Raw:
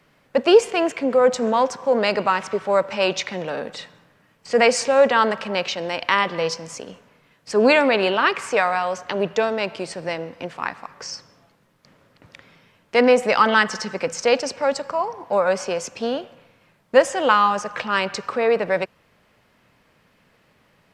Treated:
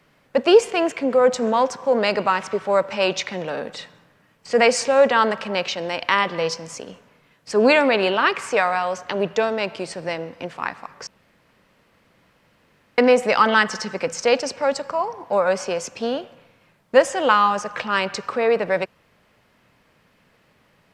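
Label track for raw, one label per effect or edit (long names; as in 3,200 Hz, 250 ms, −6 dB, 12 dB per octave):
11.070000	12.980000	fill with room tone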